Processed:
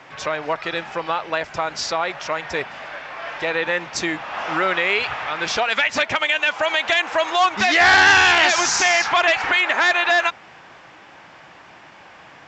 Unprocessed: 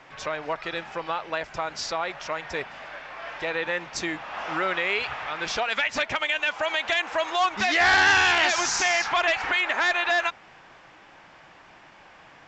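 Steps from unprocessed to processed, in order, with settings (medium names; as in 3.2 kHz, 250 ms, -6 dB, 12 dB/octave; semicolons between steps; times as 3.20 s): high-pass 62 Hz; trim +6 dB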